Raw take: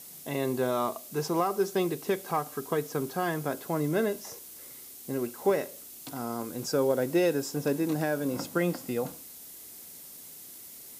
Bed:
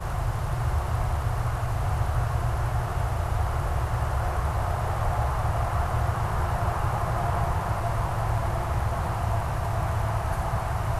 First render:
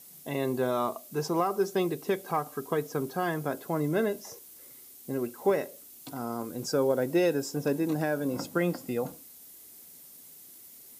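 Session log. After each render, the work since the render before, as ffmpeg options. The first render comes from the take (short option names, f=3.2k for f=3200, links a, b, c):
-af "afftdn=nr=6:nf=-47"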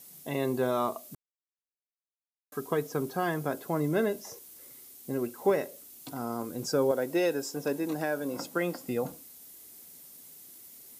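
-filter_complex "[0:a]asettb=1/sr,asplit=3[a][b][c];[a]atrim=end=6.914[d];[b]atrim=start=6.91:end=8.88,asetpts=PTS-STARTPTS,afade=t=in:d=0.004:c=qsin,afade=t=out:st=1.966:d=0.004:c=qsin,highpass=f=340:p=1[e];[c]atrim=start=8.876[f];[d][e]acrossfade=d=0.004:c1=hsin:c2=qsin[g];[g][f]acrossfade=d=0.004:c1=qsin:c2=hsin,asplit=3[h][i][j];[h]atrim=end=1.15,asetpts=PTS-STARTPTS,afade=t=out:st=1.146:d=0.004:c=hsin[k];[i]atrim=start=1.15:end=2.52,asetpts=PTS-STARTPTS,volume=0[l];[j]atrim=start=2.52,asetpts=PTS-STARTPTS,afade=t=in:d=0.004:c=hsin[m];[k][l][m]concat=n=3:v=0:a=1"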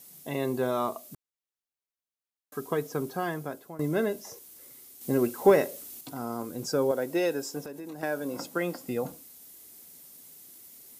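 -filter_complex "[0:a]asettb=1/sr,asplit=3[a][b][c];[a]atrim=end=5.014[d];[b]atrim=start=5.01:end=6.01,asetpts=PTS-STARTPTS,afade=t=in:d=0.004:c=qsin,afade=t=out:st=0.996:d=0.004:c=qsin,acontrast=66[e];[c]atrim=start=6.006[f];[d][e]acrossfade=d=0.004:c1=hsin:c2=qsin[g];[g][f]acrossfade=d=0.004:c1=qsin:c2=hsin,asettb=1/sr,asplit=3[h][i][j];[h]atrim=end=7.604[k];[i]atrim=start=7.6:end=8.03,asetpts=PTS-STARTPTS,afade=t=in:d=0.004:c=qsin,afade=t=out:st=0.426:d=0.004:c=qsin,acompressor=threshold=-37dB:ratio=6:attack=3.2:release=140:knee=1:detection=peak[l];[j]atrim=start=8.026[m];[k][l]acrossfade=d=0.004:c1=hsin:c2=qsin[n];[n][m]acrossfade=d=0.004:c1=qsin:c2=hsin,asplit=2[o][p];[o]atrim=end=3.79,asetpts=PTS-STARTPTS,afade=t=out:st=2.9:d=0.89:c=qsin:silence=0.149624[q];[p]atrim=start=3.79,asetpts=PTS-STARTPTS,afade=t=in:d=0.004:c=hsin:silence=0.149624[r];[q][r]concat=n=2:v=0:a=1"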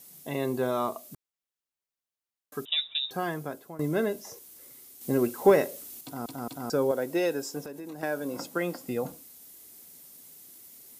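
-filter_complex "[0:a]asettb=1/sr,asplit=3[a][b][c];[a]atrim=end=2.654[d];[b]atrim=start=2.65:end=3.11,asetpts=PTS-STARTPTS,afade=t=in:d=0.004:c=qsin,afade=t=out:st=0.456:d=0.004:c=qsin,lowpass=f=3.4k:t=q:w=0.5098,lowpass=f=3.4k:t=q:w=0.6013,lowpass=f=3.4k:t=q:w=0.9,lowpass=f=3.4k:t=q:w=2.563,afreqshift=-4000[e];[c]atrim=start=3.106[f];[d][e]acrossfade=d=0.004:c1=hsin:c2=qsin[g];[g][f]acrossfade=d=0.004:c1=qsin:c2=hsin,asplit=4[h][i][j][k];[h]atrim=end=6.262[l];[i]atrim=start=6.038:end=6.262[m];[j]atrim=start=6.038:end=6.262[n];[k]atrim=start=6.698[o];[l][m]acrossfade=d=0.004:c1=hsin:c2=hsin[p];[p][n]acrossfade=d=0.004:c1=hsin:c2=hsin[q];[q][o]acrossfade=d=0.004:c1=hsin:c2=hsin"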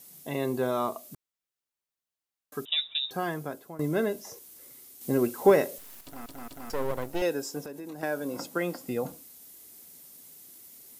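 -filter_complex "[0:a]asettb=1/sr,asplit=3[a][b][c];[a]atrim=end=5.784[d];[b]atrim=start=5.78:end=7.22,asetpts=PTS-STARTPTS,afade=t=in:d=0.004:c=qsin,afade=t=out:st=1.436:d=0.004:c=qsin,aeval=exprs='max(val(0),0)':c=same[e];[c]atrim=start=7.216[f];[d][e]acrossfade=d=0.004:c1=hsin:c2=qsin[g];[g][f]acrossfade=d=0.004:c1=qsin:c2=hsin"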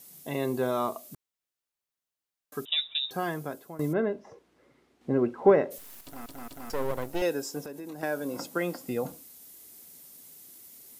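-filter_complex "[0:a]asplit=3[a][b][c];[a]afade=t=out:st=3.92:d=0.02[d];[b]lowpass=1.8k,afade=t=in:st=3.92:d=0.02,afade=t=out:st=5.7:d=0.02[e];[c]afade=t=in:st=5.7:d=0.02[f];[d][e][f]amix=inputs=3:normalize=0"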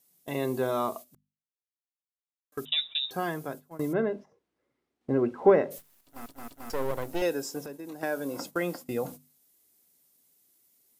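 -af "agate=range=-16dB:threshold=-41dB:ratio=16:detection=peak,bandreject=f=50:t=h:w=6,bandreject=f=100:t=h:w=6,bandreject=f=150:t=h:w=6,bandreject=f=200:t=h:w=6,bandreject=f=250:t=h:w=6"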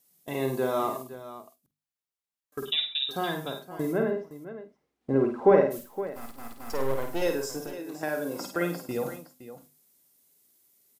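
-filter_complex "[0:a]asplit=2[a][b];[b]adelay=47,volume=-13.5dB[c];[a][c]amix=inputs=2:normalize=0,aecho=1:1:52|104|515:0.531|0.2|0.211"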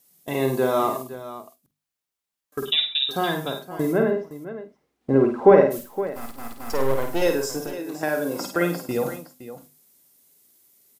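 -af "volume=6dB,alimiter=limit=-1dB:level=0:latency=1"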